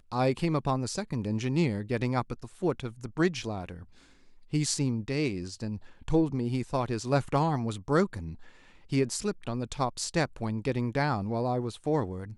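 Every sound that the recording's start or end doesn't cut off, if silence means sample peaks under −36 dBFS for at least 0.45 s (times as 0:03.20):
0:04.53–0:08.33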